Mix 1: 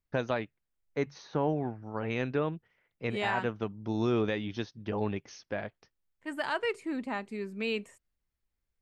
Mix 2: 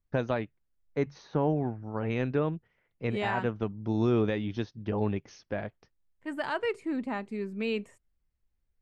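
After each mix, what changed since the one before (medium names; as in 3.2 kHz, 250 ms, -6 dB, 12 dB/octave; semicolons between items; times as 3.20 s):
master: add tilt EQ -1.5 dB/octave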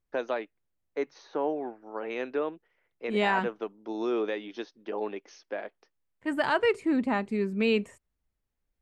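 first voice: add high-pass 320 Hz 24 dB/octave; second voice +6.0 dB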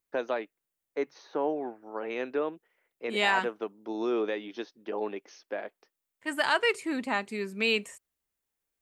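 second voice: add tilt EQ +3.5 dB/octave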